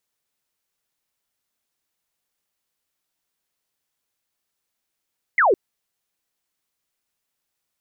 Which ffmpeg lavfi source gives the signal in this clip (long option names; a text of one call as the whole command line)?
ffmpeg -f lavfi -i "aevalsrc='0.224*clip(t/0.002,0,1)*clip((0.16-t)/0.002,0,1)*sin(2*PI*2200*0.16/log(340/2200)*(exp(log(340/2200)*t/0.16)-1))':duration=0.16:sample_rate=44100" out.wav